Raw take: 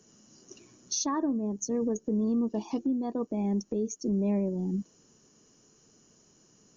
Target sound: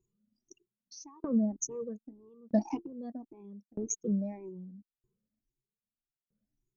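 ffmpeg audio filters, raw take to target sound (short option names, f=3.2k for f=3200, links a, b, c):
-af "afftfilt=real='re*pow(10,23/40*sin(2*PI*(0.7*log(max(b,1)*sr/1024/100)/log(2)-(1.8)*(pts-256)/sr)))':imag='im*pow(10,23/40*sin(2*PI*(0.7*log(max(b,1)*sr/1024/100)/log(2)-(1.8)*(pts-256)/sr)))':win_size=1024:overlap=0.75,anlmdn=2.51,aeval=exprs='val(0)*pow(10,-33*if(lt(mod(0.79*n/s,1),2*abs(0.79)/1000),1-mod(0.79*n/s,1)/(2*abs(0.79)/1000),(mod(0.79*n/s,1)-2*abs(0.79)/1000)/(1-2*abs(0.79)/1000))/20)':c=same"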